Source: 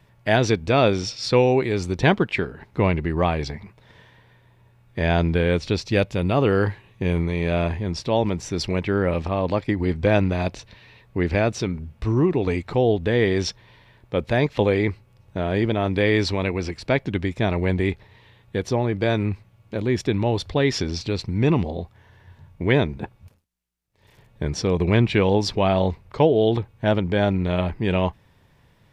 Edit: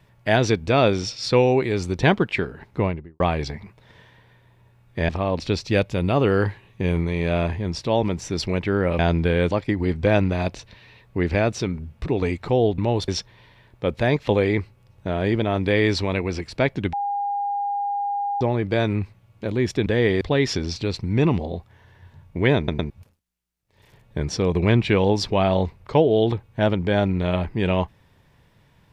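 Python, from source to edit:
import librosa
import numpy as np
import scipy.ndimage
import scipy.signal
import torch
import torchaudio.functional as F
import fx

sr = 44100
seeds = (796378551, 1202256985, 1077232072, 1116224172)

y = fx.studio_fade_out(x, sr, start_s=2.67, length_s=0.53)
y = fx.edit(y, sr, fx.swap(start_s=5.09, length_s=0.52, other_s=9.2, other_length_s=0.31),
    fx.cut(start_s=12.06, length_s=0.25),
    fx.swap(start_s=13.03, length_s=0.35, other_s=20.16, other_length_s=0.3),
    fx.bleep(start_s=17.23, length_s=1.48, hz=810.0, db=-22.0),
    fx.stutter_over(start_s=22.82, slice_s=0.11, count=3), tone=tone)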